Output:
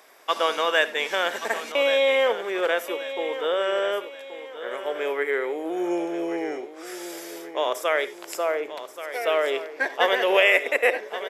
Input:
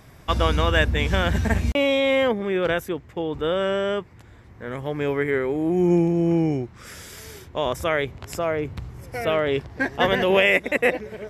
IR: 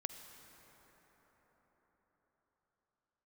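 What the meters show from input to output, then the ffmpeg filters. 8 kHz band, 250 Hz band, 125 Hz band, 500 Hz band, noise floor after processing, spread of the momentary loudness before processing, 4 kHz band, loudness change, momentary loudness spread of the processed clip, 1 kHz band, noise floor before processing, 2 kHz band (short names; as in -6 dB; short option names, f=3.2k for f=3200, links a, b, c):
+1.5 dB, -9.5 dB, under -30 dB, -1.0 dB, -43 dBFS, 14 LU, +0.5 dB, -1.5 dB, 16 LU, +0.5 dB, -48 dBFS, +0.5 dB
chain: -filter_complex "[0:a]highpass=f=420:w=0.5412,highpass=f=420:w=1.3066,highshelf=f=11k:g=3,aecho=1:1:1129|2258|3387|4516:0.251|0.098|0.0382|0.0149[a];[1:a]atrim=start_sample=2205,atrim=end_sample=4410[b];[a][b]afir=irnorm=-1:irlink=0,volume=2.5dB"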